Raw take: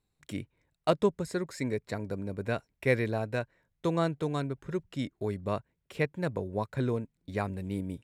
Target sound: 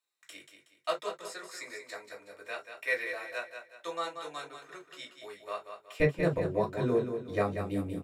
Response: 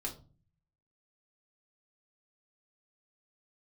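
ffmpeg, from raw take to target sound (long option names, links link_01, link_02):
-filter_complex "[0:a]asetnsamples=nb_out_samples=441:pad=0,asendcmd='6 highpass f 160',highpass=1200,aecho=1:1:185|370|555|740:0.398|0.147|0.0545|0.0202[link_01];[1:a]atrim=start_sample=2205,afade=type=out:start_time=0.14:duration=0.01,atrim=end_sample=6615,asetrate=66150,aresample=44100[link_02];[link_01][link_02]afir=irnorm=-1:irlink=0,volume=4.5dB"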